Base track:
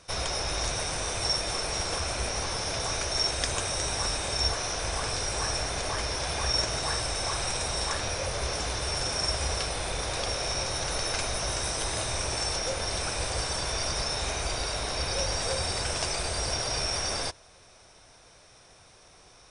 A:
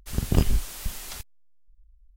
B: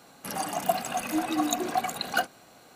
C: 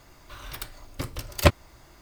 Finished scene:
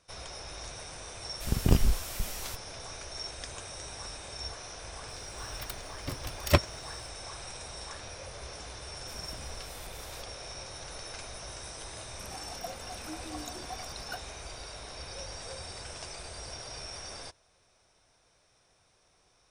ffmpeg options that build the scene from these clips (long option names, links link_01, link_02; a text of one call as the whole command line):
ffmpeg -i bed.wav -i cue0.wav -i cue1.wav -i cue2.wav -filter_complex "[1:a]asplit=2[link_01][link_02];[0:a]volume=-12.5dB[link_03];[link_02]acompressor=threshold=-32dB:ratio=6:attack=3.2:release=140:knee=1:detection=peak[link_04];[link_01]atrim=end=2.16,asetpts=PTS-STARTPTS,volume=-2dB,afade=type=in:duration=0.004:curve=hsin,afade=type=out:start_time=2.156:duration=0.004:curve=hsin,adelay=1340[link_05];[3:a]atrim=end=2.01,asetpts=PTS-STARTPTS,volume=-4.5dB,afade=type=in:duration=0.004:curve=hsin,afade=type=out:start_time=2.006:duration=0.004:curve=hsin,adelay=5080[link_06];[link_04]atrim=end=2.16,asetpts=PTS-STARTPTS,volume=-11dB,afade=type=in:duration=0.004:curve=hsin,afade=type=out:start_time=2.156:duration=0.004:curve=hsin,adelay=9010[link_07];[2:a]atrim=end=2.75,asetpts=PTS-STARTPTS,volume=-15.5dB,afade=type=in:duration=0.004:curve=hsin,afade=type=out:start_time=2.746:duration=0.004:curve=hsin,adelay=11950[link_08];[link_03][link_05][link_06][link_07][link_08]amix=inputs=5:normalize=0" out.wav